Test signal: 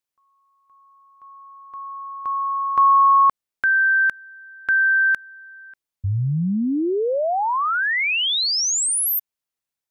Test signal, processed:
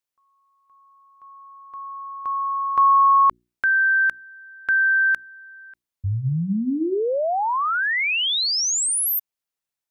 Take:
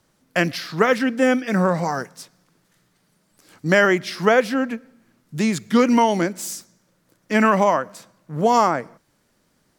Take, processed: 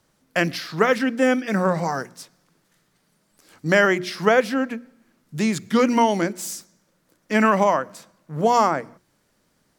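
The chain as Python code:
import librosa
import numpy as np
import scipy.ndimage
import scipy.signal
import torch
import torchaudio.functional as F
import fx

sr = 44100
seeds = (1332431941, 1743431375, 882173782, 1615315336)

y = fx.hum_notches(x, sr, base_hz=60, count=6)
y = y * librosa.db_to_amplitude(-1.0)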